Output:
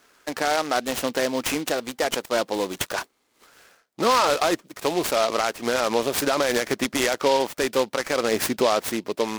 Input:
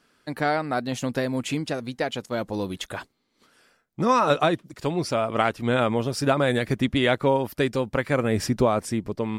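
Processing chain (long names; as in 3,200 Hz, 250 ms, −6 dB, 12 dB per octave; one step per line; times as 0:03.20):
high-pass filter 410 Hz 12 dB per octave
brickwall limiter −17.5 dBFS, peak gain reduction 10 dB
short delay modulated by noise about 3,300 Hz, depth 0.057 ms
level +7 dB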